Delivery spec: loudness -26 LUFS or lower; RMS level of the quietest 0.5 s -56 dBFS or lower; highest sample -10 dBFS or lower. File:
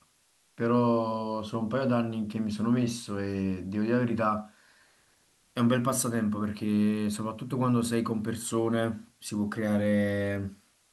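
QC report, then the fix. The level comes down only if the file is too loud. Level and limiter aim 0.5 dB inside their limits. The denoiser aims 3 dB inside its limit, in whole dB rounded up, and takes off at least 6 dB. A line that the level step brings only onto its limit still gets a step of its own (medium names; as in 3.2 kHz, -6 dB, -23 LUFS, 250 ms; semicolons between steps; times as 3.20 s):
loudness -29.0 LUFS: pass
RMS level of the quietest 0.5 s -67 dBFS: pass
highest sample -13.5 dBFS: pass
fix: none needed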